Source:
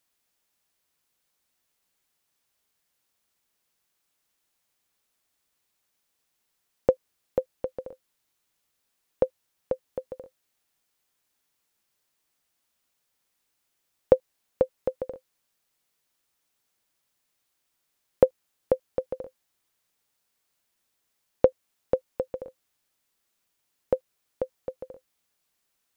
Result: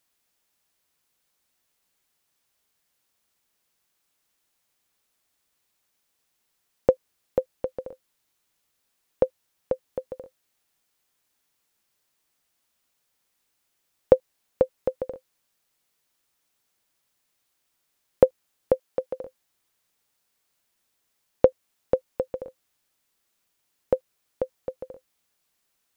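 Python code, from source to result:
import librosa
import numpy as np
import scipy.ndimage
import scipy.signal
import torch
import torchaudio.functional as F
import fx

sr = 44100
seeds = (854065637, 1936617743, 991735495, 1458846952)

y = fx.low_shelf(x, sr, hz=150.0, db=-12.0, at=(18.74, 19.23))
y = y * 10.0 ** (2.0 / 20.0)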